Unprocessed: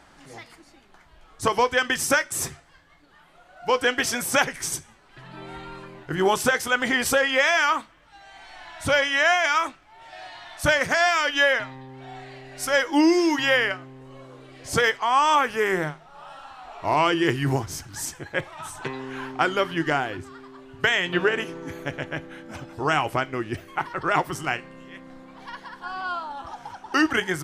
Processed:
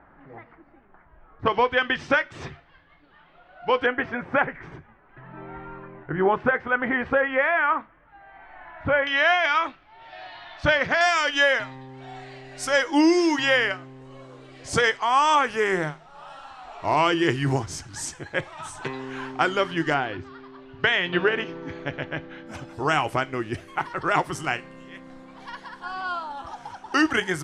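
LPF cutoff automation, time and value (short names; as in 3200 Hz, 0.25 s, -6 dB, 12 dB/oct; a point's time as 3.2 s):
LPF 24 dB/oct
1800 Hz
from 1.46 s 3500 Hz
from 3.86 s 2000 Hz
from 9.07 s 4200 Hz
from 11.01 s 9200 Hz
from 19.94 s 4700 Hz
from 22.47 s 11000 Hz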